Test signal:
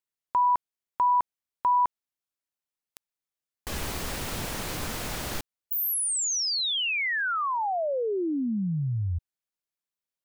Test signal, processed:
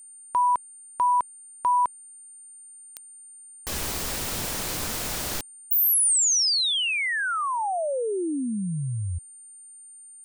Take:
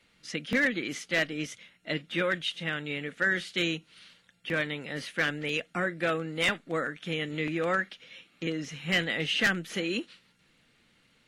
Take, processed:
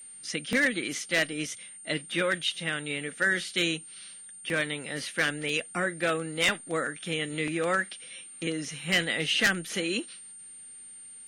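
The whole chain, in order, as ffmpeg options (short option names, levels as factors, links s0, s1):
-af "bass=f=250:g=-2,treble=f=4000:g=6,aeval=exprs='val(0)+0.00562*sin(2*PI*9000*n/s)':c=same,volume=1.12"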